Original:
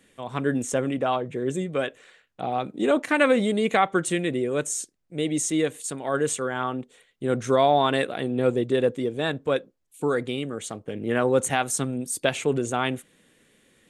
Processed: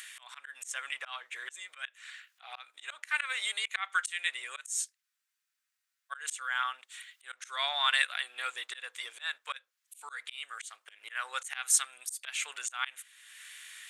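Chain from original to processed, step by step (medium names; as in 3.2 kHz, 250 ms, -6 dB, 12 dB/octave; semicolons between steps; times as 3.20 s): octave divider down 1 oct, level -5 dB; high-pass 1.4 kHz 24 dB/octave; in parallel at +3 dB: upward compressor, threshold -34 dBFS; on the sum: slow attack 212 ms; spectral freeze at 5.05 s, 1.08 s; trim -4 dB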